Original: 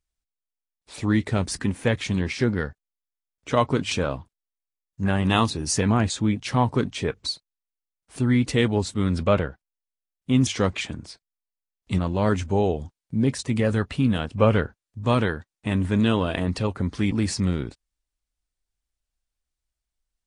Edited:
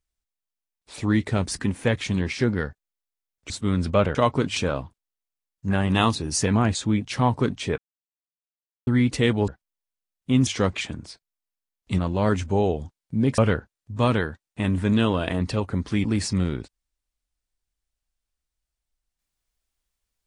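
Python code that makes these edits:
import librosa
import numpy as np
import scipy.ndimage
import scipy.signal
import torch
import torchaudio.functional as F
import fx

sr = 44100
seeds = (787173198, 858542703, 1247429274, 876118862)

y = fx.edit(x, sr, fx.silence(start_s=7.13, length_s=1.09),
    fx.move(start_s=8.83, length_s=0.65, to_s=3.5),
    fx.cut(start_s=13.38, length_s=1.07), tone=tone)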